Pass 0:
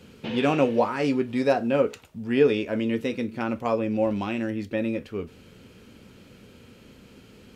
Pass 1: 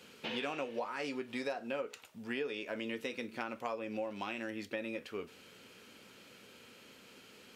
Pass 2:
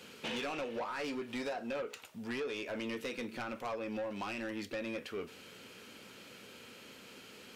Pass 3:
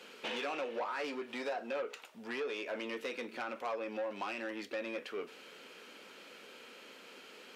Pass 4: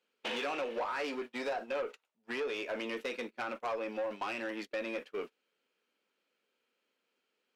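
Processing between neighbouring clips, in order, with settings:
high-pass 900 Hz 6 dB/octave; compression 6:1, threshold -35 dBFS, peak gain reduction 13.5 dB
saturation -37 dBFS, distortion -10 dB; trim +4 dB
high-pass 350 Hz 12 dB/octave; treble shelf 5.3 kHz -9 dB; trim +2 dB
gate -42 dBFS, range -31 dB; in parallel at -9 dB: one-sided clip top -40 dBFS

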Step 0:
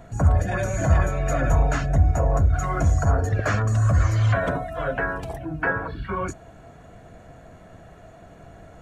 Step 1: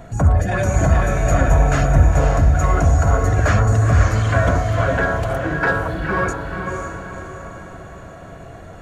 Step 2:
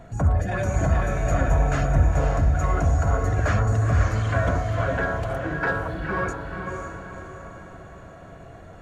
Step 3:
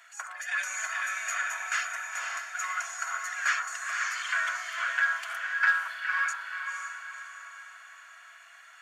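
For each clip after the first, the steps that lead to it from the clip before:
in parallel at -4 dB: saturation -23 dBFS, distortion -8 dB; on the sum: echo that smears into a reverb 513 ms, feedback 47%, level -4 dB; trim +2 dB
treble shelf 6.5 kHz -5.5 dB; trim -6 dB
inverse Chebyshev high-pass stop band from 250 Hz, stop band 80 dB; band-stop 3.9 kHz, Q 12; trim +5.5 dB

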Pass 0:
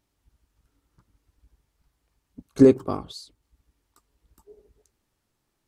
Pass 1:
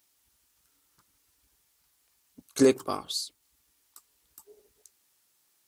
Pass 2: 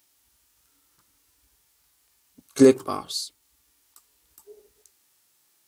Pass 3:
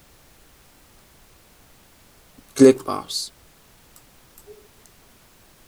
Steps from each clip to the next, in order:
tilt EQ +4 dB/octave
harmonic-percussive split harmonic +9 dB; trim -1.5 dB
added noise pink -56 dBFS; trim +3 dB

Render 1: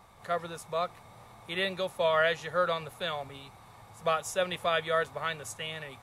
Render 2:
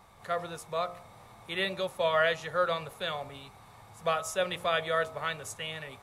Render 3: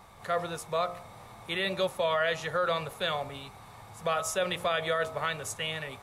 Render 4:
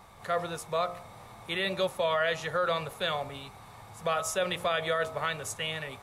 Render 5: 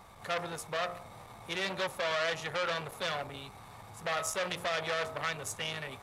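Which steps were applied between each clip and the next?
de-hum 58.33 Hz, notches 22
peak limiter -23 dBFS, peak gain reduction 8 dB; trim +4 dB
no audible change
transformer saturation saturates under 2.1 kHz

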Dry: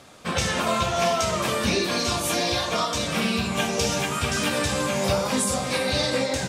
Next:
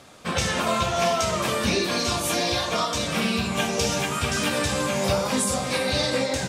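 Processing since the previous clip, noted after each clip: no audible change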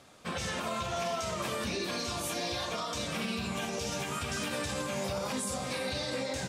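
peak limiter -17 dBFS, peak gain reduction 7.5 dB; trim -8 dB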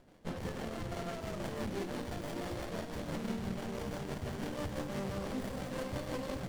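feedback echo behind a high-pass 128 ms, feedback 81%, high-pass 3.8 kHz, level -7 dB; rotary cabinet horn 6 Hz; sliding maximum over 33 samples

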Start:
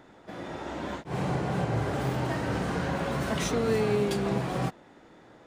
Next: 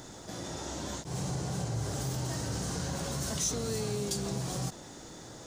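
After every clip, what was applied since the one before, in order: FFT filter 120 Hz 0 dB, 220 Hz -6 dB, 2.4 kHz -9 dB, 6.3 kHz +14 dB, 11 kHz +8 dB; level flattener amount 50%; trim -6.5 dB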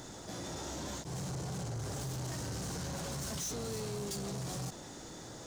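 word length cut 12-bit, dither none; saturation -35.5 dBFS, distortion -10 dB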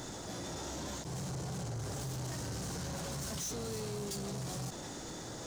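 peak limiter -43.5 dBFS, peak gain reduction 8 dB; trim +7.5 dB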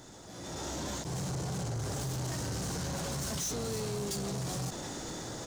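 level rider gain up to 12 dB; trim -8 dB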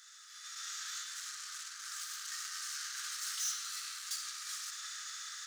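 rippled Chebyshev high-pass 1.2 kHz, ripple 3 dB; reverberation RT60 2.9 s, pre-delay 15 ms, DRR 1 dB

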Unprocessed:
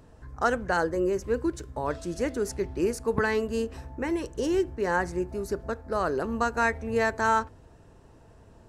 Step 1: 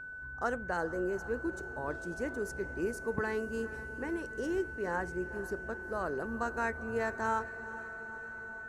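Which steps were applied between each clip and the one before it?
peaking EQ 4 kHz -6.5 dB 1.6 oct; echo that smears into a reverb 464 ms, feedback 68%, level -15 dB; whistle 1.5 kHz -34 dBFS; trim -8 dB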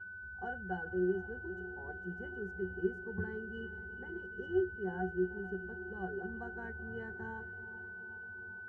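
pitch-class resonator F#, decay 0.2 s; trim +8 dB

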